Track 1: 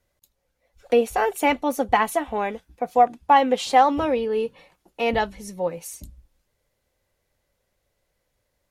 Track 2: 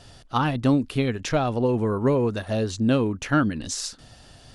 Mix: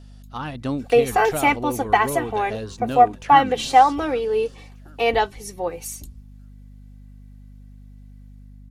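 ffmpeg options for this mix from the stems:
-filter_complex "[0:a]aecho=1:1:2.6:0.57,volume=0.631[s0];[1:a]deesser=0.75,volume=0.335,asplit=2[s1][s2];[s2]volume=0.126,aecho=0:1:767|1534|2301|3068:1|0.31|0.0961|0.0298[s3];[s0][s1][s3]amix=inputs=3:normalize=0,lowshelf=f=430:g=-4.5,dynaudnorm=f=180:g=5:m=2.24,aeval=exprs='val(0)+0.00794*(sin(2*PI*50*n/s)+sin(2*PI*2*50*n/s)/2+sin(2*PI*3*50*n/s)/3+sin(2*PI*4*50*n/s)/4+sin(2*PI*5*50*n/s)/5)':c=same"

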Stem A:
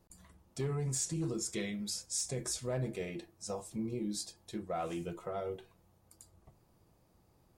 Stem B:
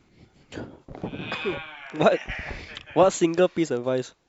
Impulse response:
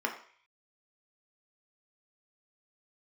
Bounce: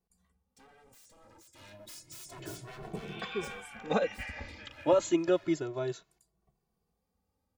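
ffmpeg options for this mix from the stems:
-filter_complex "[0:a]aeval=exprs='0.0112*(abs(mod(val(0)/0.0112+3,4)-2)-1)':c=same,volume=0.944,afade=t=in:st=1.53:d=0.27:silence=0.266073,afade=t=out:st=3.62:d=0.3:silence=0.354813[s0];[1:a]adelay=1900,volume=0.562[s1];[s0][s1]amix=inputs=2:normalize=0,asplit=2[s2][s3];[s3]adelay=2.2,afreqshift=0.3[s4];[s2][s4]amix=inputs=2:normalize=1"

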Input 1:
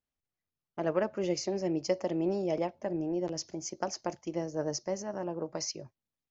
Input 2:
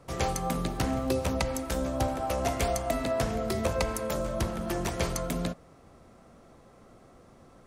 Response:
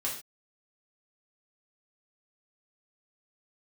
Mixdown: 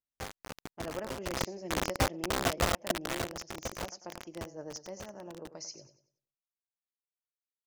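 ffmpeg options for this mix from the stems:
-filter_complex "[0:a]volume=0.299,asplit=2[s0][s1];[s1]volume=0.251[s2];[1:a]lowpass=f=1700:w=0.5412,lowpass=f=1700:w=1.3066,aeval=exprs='val(0)+0.00126*(sin(2*PI*50*n/s)+sin(2*PI*2*50*n/s)/2+sin(2*PI*3*50*n/s)/3+sin(2*PI*4*50*n/s)/4+sin(2*PI*5*50*n/s)/5)':c=same,acrusher=bits=3:mix=0:aa=0.000001,volume=0.841,afade=t=in:st=1.2:d=0.32:silence=0.251189,afade=t=out:st=2.81:d=0.54:silence=0.316228,afade=t=out:st=4.26:d=0.33:silence=0.421697[s3];[s2]aecho=0:1:95|190|285|380|475:1|0.34|0.116|0.0393|0.0134[s4];[s0][s3][s4]amix=inputs=3:normalize=0,equalizer=f=6100:t=o:w=1.2:g=3.5"

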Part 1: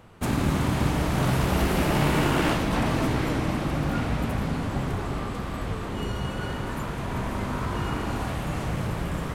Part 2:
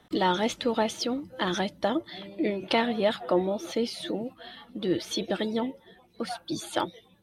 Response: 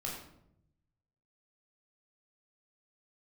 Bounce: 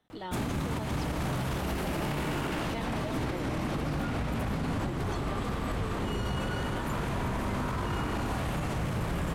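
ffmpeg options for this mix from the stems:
-filter_complex "[0:a]alimiter=limit=0.126:level=0:latency=1:release=416,adelay=100,volume=1.26[s0];[1:a]volume=0.168,asplit=2[s1][s2];[s2]apad=whole_len=416734[s3];[s0][s3]sidechaincompress=threshold=0.00631:ratio=8:attack=48:release=148[s4];[s4][s1]amix=inputs=2:normalize=0,alimiter=limit=0.0668:level=0:latency=1:release=27"

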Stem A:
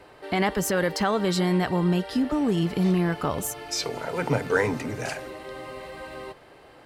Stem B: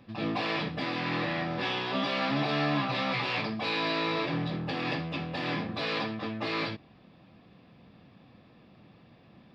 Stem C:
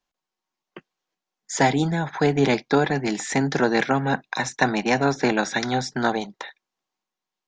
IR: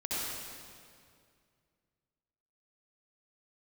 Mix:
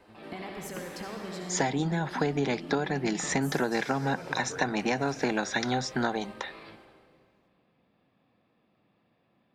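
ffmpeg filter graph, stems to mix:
-filter_complex "[0:a]acompressor=threshold=0.0355:ratio=6,volume=0.251,asplit=2[s0][s1];[s1]volume=0.631[s2];[1:a]lowpass=f=2900:p=1,lowshelf=f=200:g=-11,alimiter=level_in=1.88:limit=0.0631:level=0:latency=1,volume=0.531,volume=0.282,asplit=2[s3][s4];[s4]volume=0.168[s5];[2:a]volume=0.841,asplit=2[s6][s7];[s7]apad=whole_len=420796[s8];[s3][s8]sidechaincompress=threshold=0.0112:ratio=8:attack=16:release=128[s9];[3:a]atrim=start_sample=2205[s10];[s2][s5]amix=inputs=2:normalize=0[s11];[s11][s10]afir=irnorm=-1:irlink=0[s12];[s0][s9][s6][s12]amix=inputs=4:normalize=0,acompressor=threshold=0.0631:ratio=6"

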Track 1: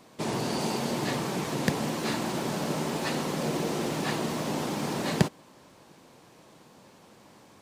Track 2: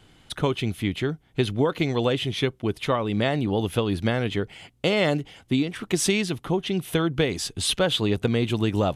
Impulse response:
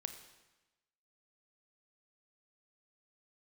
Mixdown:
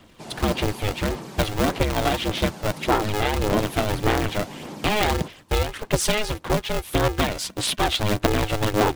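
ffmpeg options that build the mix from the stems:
-filter_complex "[0:a]volume=0.398[s0];[1:a]aeval=exprs='val(0)*sgn(sin(2*PI*210*n/s))':c=same,volume=1[s1];[s0][s1]amix=inputs=2:normalize=0,aphaser=in_gain=1:out_gain=1:delay=1.5:decay=0.33:speed=1.7:type=sinusoidal"

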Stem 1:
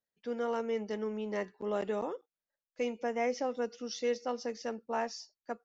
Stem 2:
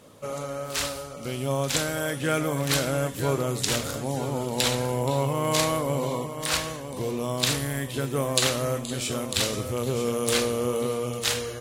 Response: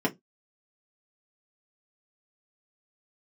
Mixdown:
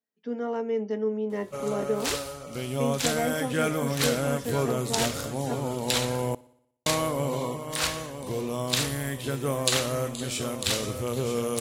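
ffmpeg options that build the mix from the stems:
-filter_complex "[0:a]volume=0.531,asplit=2[s0][s1];[s1]volume=0.355[s2];[1:a]adelay=1300,volume=0.841,asplit=3[s3][s4][s5];[s3]atrim=end=6.35,asetpts=PTS-STARTPTS,afade=t=out:st=6.346:d=0.004:c=hsin[s6];[s4]atrim=start=6.35:end=6.86,asetpts=PTS-STARTPTS,volume=0[s7];[s5]atrim=start=6.86,asetpts=PTS-STARTPTS,afade=t=in:d=0.004:c=hsin[s8];[s6][s7][s8]concat=n=3:v=0:a=1,asplit=2[s9][s10];[s10]volume=0.0708[s11];[2:a]atrim=start_sample=2205[s12];[s2][s12]afir=irnorm=-1:irlink=0[s13];[s11]aecho=0:1:60|120|180|240|300|360|420|480|540:1|0.58|0.336|0.195|0.113|0.0656|0.0381|0.0221|0.0128[s14];[s0][s9][s13][s14]amix=inputs=4:normalize=0"

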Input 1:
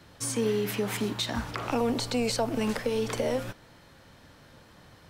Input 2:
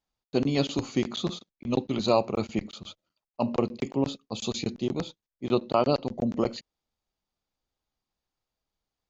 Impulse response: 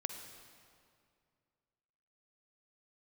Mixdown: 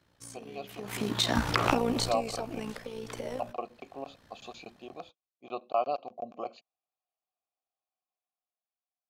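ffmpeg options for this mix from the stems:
-filter_complex "[0:a]dynaudnorm=f=150:g=9:m=2.66,tremolo=f=59:d=0.667,acompressor=threshold=0.0398:ratio=2,volume=0.75,afade=t=in:st=0.76:d=0.48:silence=0.316228,afade=t=out:st=2.2:d=0.66:silence=0.223872[s0];[1:a]asplit=3[s1][s2][s3];[s1]bandpass=f=730:t=q:w=8,volume=1[s4];[s2]bandpass=f=1090:t=q:w=8,volume=0.501[s5];[s3]bandpass=f=2440:t=q:w=8,volume=0.355[s6];[s4][s5][s6]amix=inputs=3:normalize=0,highshelf=f=5600:g=10.5,volume=0.562,asplit=2[s7][s8];[s8]apad=whole_len=224843[s9];[s0][s9]sidechaincompress=threshold=0.00501:ratio=4:attack=24:release=1020[s10];[s10][s7]amix=inputs=2:normalize=0,dynaudnorm=f=100:g=17:m=2.24"

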